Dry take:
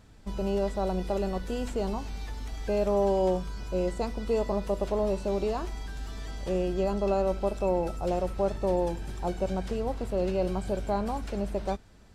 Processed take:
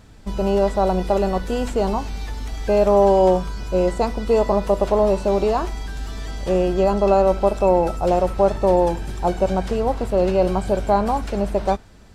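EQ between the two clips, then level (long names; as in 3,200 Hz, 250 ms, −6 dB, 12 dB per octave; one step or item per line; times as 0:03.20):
dynamic equaliser 900 Hz, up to +5 dB, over −39 dBFS, Q 0.85
+8.0 dB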